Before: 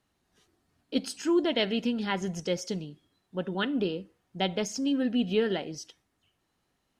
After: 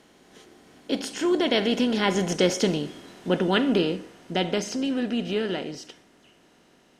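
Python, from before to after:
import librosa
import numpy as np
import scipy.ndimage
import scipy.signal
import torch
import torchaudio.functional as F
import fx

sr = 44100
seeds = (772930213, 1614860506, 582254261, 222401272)

y = fx.bin_compress(x, sr, power=0.6)
y = fx.doppler_pass(y, sr, speed_mps=12, closest_m=12.0, pass_at_s=2.85)
y = y * librosa.db_to_amplitude(6.0)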